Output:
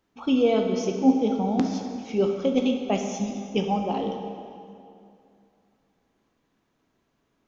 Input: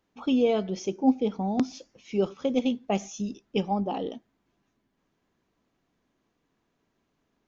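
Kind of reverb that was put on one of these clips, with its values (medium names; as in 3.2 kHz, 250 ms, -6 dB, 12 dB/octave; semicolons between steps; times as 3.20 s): plate-style reverb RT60 2.5 s, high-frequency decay 0.8×, DRR 3 dB; trim +1.5 dB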